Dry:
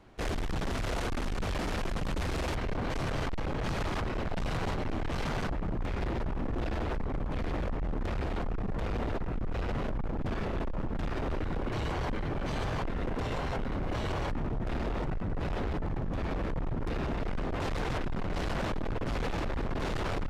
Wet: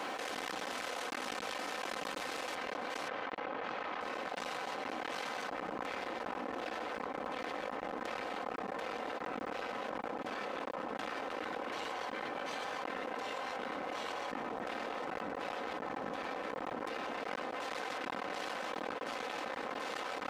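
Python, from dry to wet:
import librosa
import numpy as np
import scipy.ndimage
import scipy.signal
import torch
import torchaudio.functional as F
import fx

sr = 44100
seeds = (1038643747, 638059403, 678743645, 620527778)

y = fx.lowpass(x, sr, hz=2600.0, slope=12, at=(3.08, 4.01))
y = scipy.signal.sosfilt(scipy.signal.butter(2, 520.0, 'highpass', fs=sr, output='sos'), y)
y = y + 0.46 * np.pad(y, (int(3.9 * sr / 1000.0), 0))[:len(y)]
y = fx.env_flatten(y, sr, amount_pct=100)
y = y * librosa.db_to_amplitude(-6.5)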